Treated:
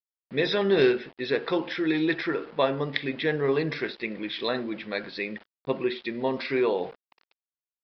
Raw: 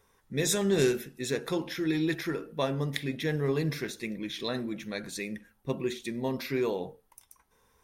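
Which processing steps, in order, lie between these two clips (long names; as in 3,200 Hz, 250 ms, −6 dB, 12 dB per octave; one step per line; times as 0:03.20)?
centre clipping without the shift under −49 dBFS
bass and treble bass −12 dB, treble −7 dB
downsampling to 11,025 Hz
level +7 dB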